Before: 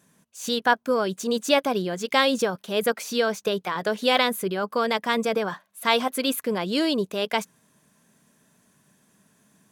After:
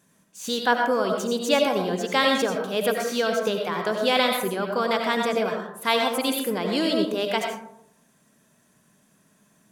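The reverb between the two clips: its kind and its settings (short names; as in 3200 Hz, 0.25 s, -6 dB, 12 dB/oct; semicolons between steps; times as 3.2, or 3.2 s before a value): digital reverb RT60 0.73 s, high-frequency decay 0.4×, pre-delay 50 ms, DRR 2 dB; gain -1.5 dB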